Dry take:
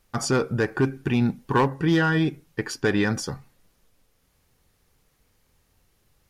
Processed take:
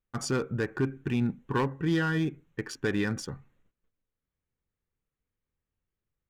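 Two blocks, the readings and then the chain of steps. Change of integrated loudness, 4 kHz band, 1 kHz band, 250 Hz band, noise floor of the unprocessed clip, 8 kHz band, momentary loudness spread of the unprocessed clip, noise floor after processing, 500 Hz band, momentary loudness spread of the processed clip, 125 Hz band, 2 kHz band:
-6.5 dB, -7.0 dB, -8.5 dB, -6.0 dB, -67 dBFS, -7.0 dB, 10 LU, under -85 dBFS, -7.0 dB, 11 LU, -5.5 dB, -7.0 dB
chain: Wiener smoothing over 9 samples; gate -59 dBFS, range -15 dB; bell 750 Hz -6 dB 0.88 oct; gain -5.5 dB

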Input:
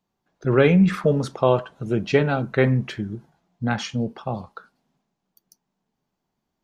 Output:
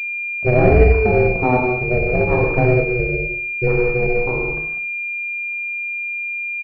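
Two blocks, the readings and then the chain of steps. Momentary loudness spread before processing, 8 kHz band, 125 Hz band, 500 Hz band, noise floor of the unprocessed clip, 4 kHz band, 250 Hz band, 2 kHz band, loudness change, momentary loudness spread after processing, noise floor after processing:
15 LU, n/a, +4.0 dB, +5.5 dB, -80 dBFS, under -10 dB, 0.0 dB, +12.5 dB, +4.0 dB, 9 LU, -25 dBFS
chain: gate with hold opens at -43 dBFS; low shelf 320 Hz +8.5 dB; limiter -7.5 dBFS, peak gain reduction 6.5 dB; rotary speaker horn 1.1 Hz; ring modulator 250 Hz; on a send: feedback echo 64 ms, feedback 47%, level -10.5 dB; on the sum: non-linear reverb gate 0.22 s flat, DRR 0 dB; pulse-width modulation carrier 2400 Hz; gain +4 dB

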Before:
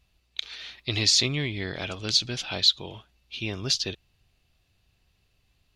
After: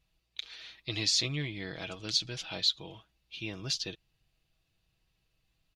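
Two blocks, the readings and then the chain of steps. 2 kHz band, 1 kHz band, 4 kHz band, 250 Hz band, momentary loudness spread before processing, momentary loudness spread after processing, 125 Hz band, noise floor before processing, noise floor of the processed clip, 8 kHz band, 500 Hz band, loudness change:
-7.0 dB, -7.5 dB, -7.0 dB, -6.5 dB, 17 LU, 17 LU, -7.0 dB, -70 dBFS, -78 dBFS, -7.0 dB, -8.0 dB, -7.0 dB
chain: comb 6.2 ms, depth 50%; gain -8 dB

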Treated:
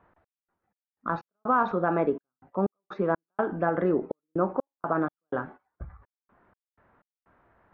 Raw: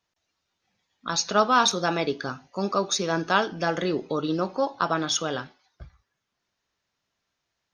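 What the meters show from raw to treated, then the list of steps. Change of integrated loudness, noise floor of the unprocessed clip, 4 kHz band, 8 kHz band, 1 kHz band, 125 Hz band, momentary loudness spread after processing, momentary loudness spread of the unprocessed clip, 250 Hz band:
-3.5 dB, -81 dBFS, under -30 dB, under -40 dB, -3.5 dB, -1.5 dB, 13 LU, 11 LU, -1.0 dB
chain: LPF 1500 Hz 24 dB/oct; gate -50 dBFS, range -10 dB; bell 140 Hz -8 dB 0.25 oct; in parallel at -2 dB: level quantiser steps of 23 dB; on the sum: limiter -14.5 dBFS, peak gain reduction 10 dB; reverse; upward compressor, threshold -41 dBFS; reverse; step gate "x.x.x.xx" 62 bpm -60 dB; gain +1.5 dB

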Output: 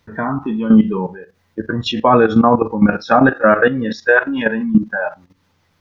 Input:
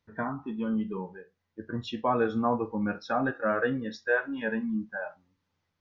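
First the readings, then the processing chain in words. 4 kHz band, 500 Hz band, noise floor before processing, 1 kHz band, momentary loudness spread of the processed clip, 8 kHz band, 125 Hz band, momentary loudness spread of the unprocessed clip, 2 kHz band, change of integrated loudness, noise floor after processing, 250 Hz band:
+17.0 dB, +14.5 dB, -81 dBFS, +15.0 dB, 12 LU, n/a, +16.0 dB, 11 LU, +14.5 dB, +15.5 dB, -62 dBFS, +16.0 dB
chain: level quantiser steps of 14 dB; maximiser +23.5 dB; gain -1 dB

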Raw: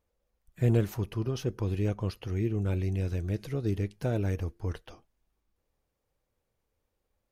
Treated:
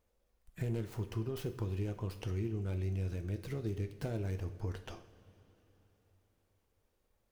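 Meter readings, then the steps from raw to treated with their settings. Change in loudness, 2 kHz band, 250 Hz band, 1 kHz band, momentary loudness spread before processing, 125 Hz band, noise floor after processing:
-7.5 dB, -6.5 dB, -8.5 dB, -6.5 dB, 7 LU, -7.5 dB, -78 dBFS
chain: tracing distortion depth 0.15 ms; compressor 5:1, threshold -37 dBFS, peak gain reduction 15.5 dB; two-slope reverb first 0.49 s, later 4 s, from -16 dB, DRR 8 dB; gain +1.5 dB

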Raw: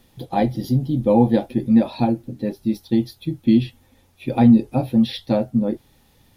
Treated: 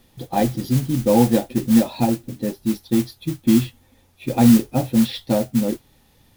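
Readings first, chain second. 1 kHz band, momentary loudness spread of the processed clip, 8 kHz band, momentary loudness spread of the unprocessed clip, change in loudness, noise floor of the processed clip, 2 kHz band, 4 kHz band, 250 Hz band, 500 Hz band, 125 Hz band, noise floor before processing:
0.0 dB, 11 LU, n/a, 11 LU, 0.0 dB, -57 dBFS, +3.0 dB, +3.0 dB, 0.0 dB, 0.0 dB, 0.0 dB, -57 dBFS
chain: modulation noise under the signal 17 dB

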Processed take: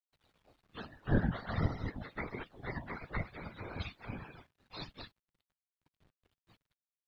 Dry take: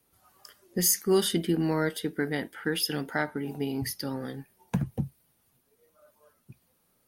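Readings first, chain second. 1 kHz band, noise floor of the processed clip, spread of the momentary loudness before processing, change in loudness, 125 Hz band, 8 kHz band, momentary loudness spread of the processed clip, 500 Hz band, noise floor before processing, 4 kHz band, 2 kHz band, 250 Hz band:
-7.0 dB, under -85 dBFS, 12 LU, -10.5 dB, -4.5 dB, under -40 dB, 18 LU, -15.0 dB, -71 dBFS, -17.5 dB, -8.5 dB, -11.0 dB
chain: spectrum mirrored in octaves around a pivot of 560 Hz; steep low-pass 5600 Hz; spectral gate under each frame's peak -20 dB weak; bell 4000 Hz +12 dB 0.77 oct; whisperiser; requantised 12-bit, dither none; tone controls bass +15 dB, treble -13 dB; flange 1.2 Hz, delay 0.1 ms, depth 4.1 ms, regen -83%; gain +9 dB

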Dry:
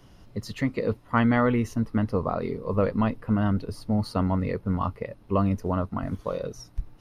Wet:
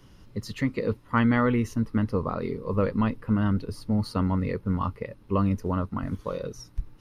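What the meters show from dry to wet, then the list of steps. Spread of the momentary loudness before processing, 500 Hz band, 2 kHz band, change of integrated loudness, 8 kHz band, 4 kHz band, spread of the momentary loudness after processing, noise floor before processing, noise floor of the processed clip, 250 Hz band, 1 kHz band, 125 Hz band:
12 LU, -2.0 dB, 0.0 dB, -0.5 dB, n/a, 0.0 dB, 12 LU, -53 dBFS, -53 dBFS, 0.0 dB, -1.5 dB, 0.0 dB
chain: bell 690 Hz -9 dB 0.39 oct

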